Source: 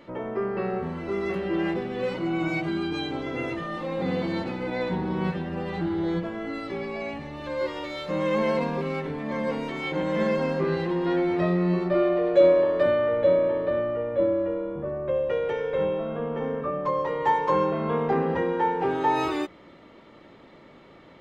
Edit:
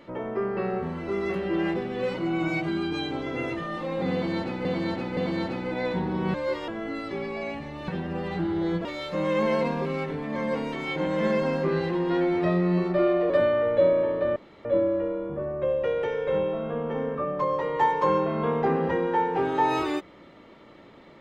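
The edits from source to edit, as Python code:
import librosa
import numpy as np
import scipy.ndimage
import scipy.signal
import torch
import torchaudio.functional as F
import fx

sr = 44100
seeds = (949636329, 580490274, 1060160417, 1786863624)

y = fx.edit(x, sr, fx.repeat(start_s=4.13, length_s=0.52, count=3),
    fx.swap(start_s=5.3, length_s=0.97, other_s=7.47, other_length_s=0.34),
    fx.cut(start_s=12.26, length_s=0.5),
    fx.room_tone_fill(start_s=13.82, length_s=0.29), tone=tone)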